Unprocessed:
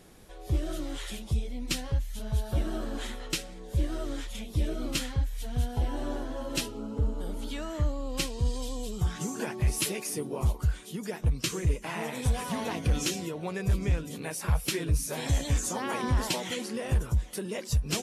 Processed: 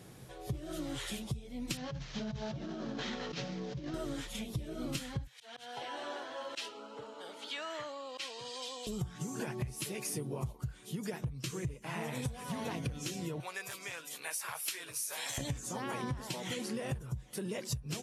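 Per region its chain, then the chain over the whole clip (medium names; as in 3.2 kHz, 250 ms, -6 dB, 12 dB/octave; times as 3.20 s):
1.77–3.94 s: CVSD coder 32 kbps + resonant low shelf 120 Hz -7.5 dB, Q 3 + compressor with a negative ratio -39 dBFS
5.27–8.87 s: tilt EQ +3.5 dB/octave + slow attack 125 ms + band-pass 490–3400 Hz
13.40–15.38 s: high-pass 990 Hz + treble shelf 9.8 kHz +6 dB + upward compressor, threshold -47 dBFS
whole clip: high-pass 66 Hz; peaking EQ 130 Hz +12.5 dB 0.48 oct; compression 12:1, threshold -34 dBFS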